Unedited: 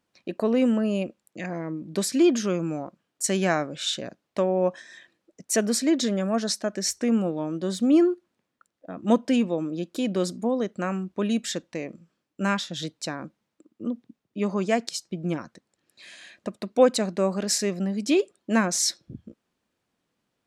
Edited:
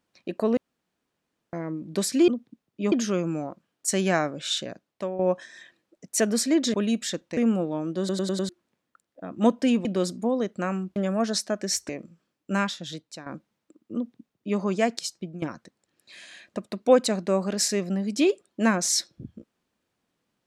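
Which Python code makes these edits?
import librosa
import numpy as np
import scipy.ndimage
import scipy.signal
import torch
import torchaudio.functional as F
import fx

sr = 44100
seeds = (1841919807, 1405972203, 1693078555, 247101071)

y = fx.edit(x, sr, fx.room_tone_fill(start_s=0.57, length_s=0.96),
    fx.fade_out_to(start_s=3.95, length_s=0.6, floor_db=-10.0),
    fx.swap(start_s=6.1, length_s=0.93, other_s=11.16, other_length_s=0.63),
    fx.stutter_over(start_s=7.65, slice_s=0.1, count=5),
    fx.cut(start_s=9.51, length_s=0.54),
    fx.fade_out_to(start_s=12.44, length_s=0.72, floor_db=-12.0),
    fx.duplicate(start_s=13.85, length_s=0.64, to_s=2.28),
    fx.fade_out_to(start_s=15.06, length_s=0.26, floor_db=-16.0), tone=tone)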